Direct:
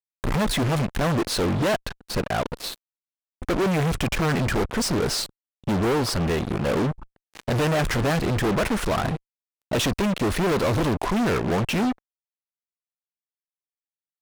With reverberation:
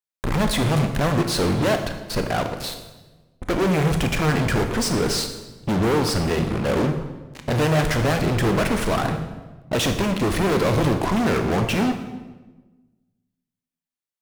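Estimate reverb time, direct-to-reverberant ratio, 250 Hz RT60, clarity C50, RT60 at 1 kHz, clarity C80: 1.2 s, 6.0 dB, 1.5 s, 8.0 dB, 1.1 s, 10.0 dB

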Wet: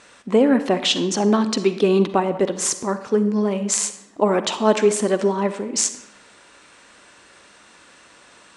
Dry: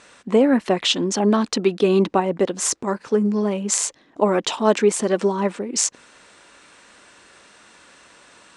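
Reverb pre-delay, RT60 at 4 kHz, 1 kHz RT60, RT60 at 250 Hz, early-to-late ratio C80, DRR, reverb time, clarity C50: 39 ms, 0.65 s, 0.90 s, 1.1 s, 14.0 dB, 11.0 dB, 0.90 s, 12.0 dB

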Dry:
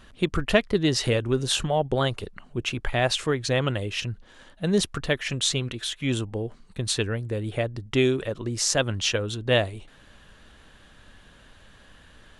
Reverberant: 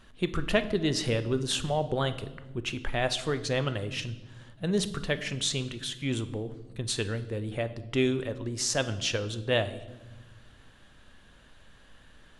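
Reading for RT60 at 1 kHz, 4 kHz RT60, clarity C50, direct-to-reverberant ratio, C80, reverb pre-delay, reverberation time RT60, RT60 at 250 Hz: 0.95 s, 0.90 s, 14.0 dB, 11.0 dB, 16.5 dB, 4 ms, 1.1 s, 1.9 s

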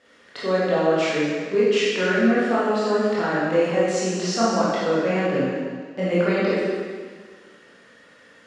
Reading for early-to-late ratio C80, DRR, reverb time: 0.0 dB, −9.5 dB, 1.7 s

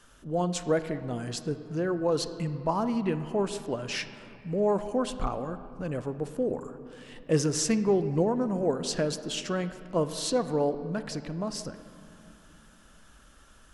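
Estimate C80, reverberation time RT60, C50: 12.5 dB, 2.9 s, 11.5 dB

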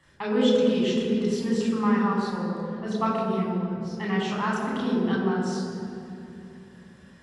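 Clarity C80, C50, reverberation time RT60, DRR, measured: 1.5 dB, 0.0 dB, 2.7 s, −4.5 dB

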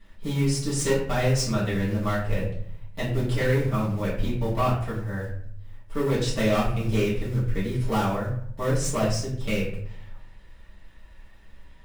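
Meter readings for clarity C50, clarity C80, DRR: 5.0 dB, 8.0 dB, −9.0 dB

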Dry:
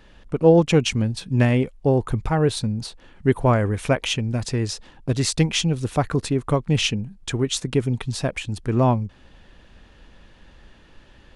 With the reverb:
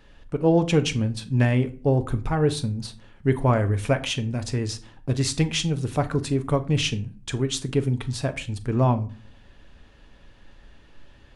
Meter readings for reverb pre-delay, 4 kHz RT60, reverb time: 7 ms, 0.25 s, 0.40 s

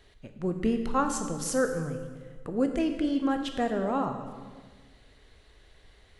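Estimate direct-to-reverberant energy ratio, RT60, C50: 5.5 dB, 1.5 s, 7.5 dB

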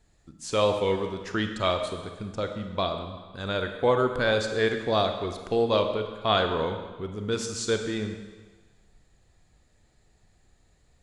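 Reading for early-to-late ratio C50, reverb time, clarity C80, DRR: 6.5 dB, 1.3 s, 8.5 dB, 5.5 dB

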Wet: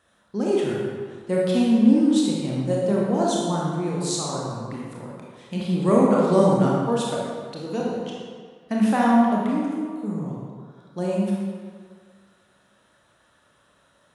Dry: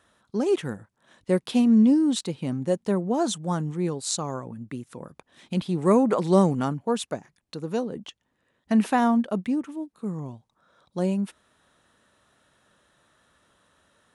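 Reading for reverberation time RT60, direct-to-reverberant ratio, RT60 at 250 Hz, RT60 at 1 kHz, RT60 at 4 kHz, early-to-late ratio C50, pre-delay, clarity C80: 1.9 s, −4.5 dB, 1.7 s, 1.9 s, 1.3 s, −2.0 dB, 24 ms, 1.0 dB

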